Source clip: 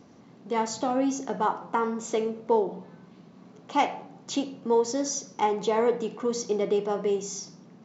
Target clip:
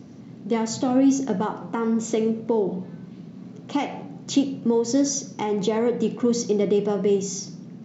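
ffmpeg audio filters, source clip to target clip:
-af "alimiter=limit=-18.5dB:level=0:latency=1:release=137,equalizer=f=125:t=o:w=1:g=9,equalizer=f=250:t=o:w=1:g=5,equalizer=f=1k:t=o:w=1:g=-6,volume=4.5dB"

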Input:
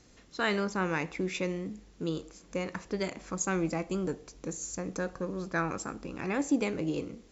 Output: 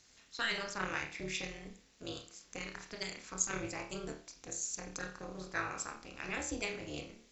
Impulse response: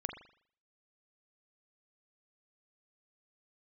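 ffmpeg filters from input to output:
-filter_complex "[0:a]tiltshelf=f=1.2k:g=-8,asettb=1/sr,asplit=3[a][b][c];[a]atrim=end=0.984[d];[b]atrim=start=0.98:end=3.51,asetpts=PTS-STARTPTS,afade=t=in:d=0.004:c=qsin,afade=t=out:st=2.526:d=0.004:c=qsin,acrossover=split=340|3000[e][f][g];[f]acompressor=threshold=-35dB:ratio=6[h];[e][h][g]amix=inputs=3:normalize=0[i];[c]atrim=start=3.506[j];[d][i]acrossfade=d=0.004:c1=hsin:c2=qsin[k];[k][j]acrossfade=d=0.004:c1=qsin:c2=hsin,tremolo=f=220:d=0.947[l];[1:a]atrim=start_sample=2205,asetrate=66150,aresample=44100[m];[l][m]afir=irnorm=-1:irlink=0,volume=2dB"

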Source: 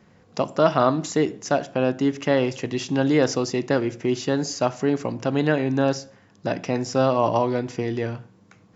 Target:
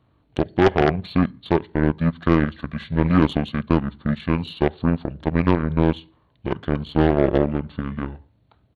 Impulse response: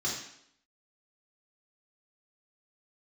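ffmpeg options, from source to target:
-af "aeval=exprs='0.668*(cos(1*acos(clip(val(0)/0.668,-1,1)))-cos(1*PI/2))+0.266*(cos(5*acos(clip(val(0)/0.668,-1,1)))-cos(5*PI/2))+0.00473*(cos(6*acos(clip(val(0)/0.668,-1,1)))-cos(6*PI/2))+0.237*(cos(7*acos(clip(val(0)/0.668,-1,1)))-cos(7*PI/2))':c=same,asetrate=26222,aresample=44100,atempo=1.68179"

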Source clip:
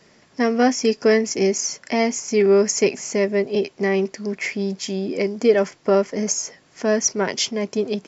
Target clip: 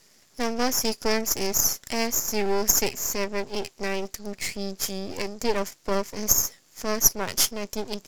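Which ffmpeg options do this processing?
-af "crystalizer=i=2:c=0,aeval=exprs='max(val(0),0)':c=same,aemphasis=mode=production:type=cd,volume=-5.5dB"

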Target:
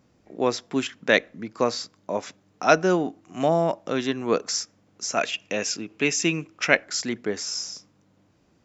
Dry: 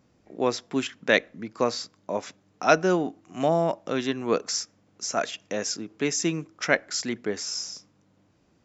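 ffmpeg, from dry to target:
-filter_complex "[0:a]asettb=1/sr,asplit=3[a][b][c];[a]atrim=end=5.144[d];[b]atrim=start=5.14:end=6.84,asetpts=PTS-STARTPTS,afade=t=in:d=0.004:c=qsin,afade=t=out:st=1.696:d=0.004:c=qsin,equalizer=f=2.6k:w=3.3:g=10.5[e];[c]atrim=start=6.836[f];[d][e]acrossfade=d=0.004:c1=hsin:c2=qsin[g];[g][f]acrossfade=d=0.004:c1=qsin:c2=hsin,volume=1.5dB"

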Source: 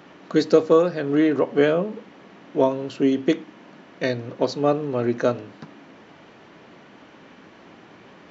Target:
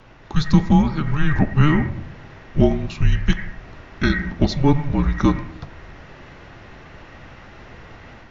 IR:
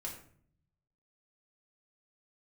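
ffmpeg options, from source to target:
-filter_complex "[0:a]afreqshift=-300,asplit=2[a][b];[b]lowpass=f=1.9k:t=q:w=13[c];[1:a]atrim=start_sample=2205,adelay=87[d];[c][d]afir=irnorm=-1:irlink=0,volume=-15dB[e];[a][e]amix=inputs=2:normalize=0,dynaudnorm=f=210:g=3:m=6dB"

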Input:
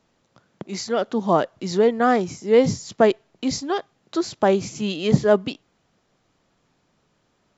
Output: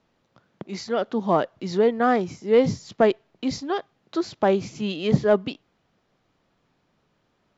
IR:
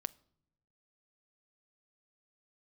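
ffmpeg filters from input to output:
-filter_complex "[0:a]lowpass=4.7k,asplit=2[a][b];[b]volume=8.5dB,asoftclip=hard,volume=-8.5dB,volume=-7.5dB[c];[a][c]amix=inputs=2:normalize=0,volume=-5dB"

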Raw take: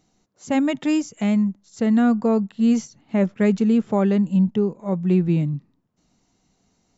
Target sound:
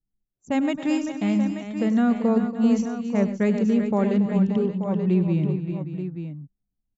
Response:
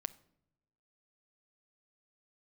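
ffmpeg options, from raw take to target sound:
-filter_complex "[0:a]anlmdn=2.51,asplit=2[a][b];[b]aecho=0:1:99|125|281|389|578|882:0.2|0.126|0.188|0.355|0.211|0.316[c];[a][c]amix=inputs=2:normalize=0,volume=-3dB"

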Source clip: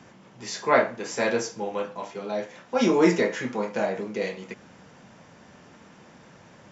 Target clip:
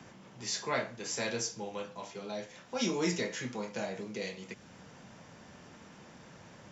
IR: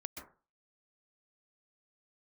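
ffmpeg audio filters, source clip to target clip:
-filter_complex "[0:a]acrossover=split=140|3000[a][b][c];[b]acompressor=threshold=-57dB:ratio=1.5[d];[a][d][c]amix=inputs=3:normalize=0"

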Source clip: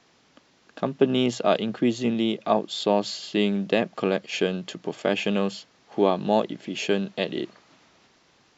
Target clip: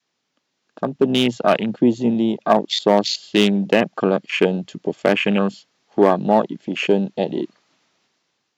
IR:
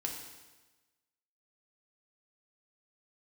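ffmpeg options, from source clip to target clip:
-af "highshelf=f=2.3k:g=6,afwtdn=0.0398,adynamicequalizer=threshold=0.0178:dfrequency=440:dqfactor=1.3:tfrequency=440:tqfactor=1.3:attack=5:release=100:ratio=0.375:range=3.5:mode=cutabove:tftype=bell,asoftclip=type=hard:threshold=-12dB,highpass=110,dynaudnorm=f=380:g=5:m=10.5dB"

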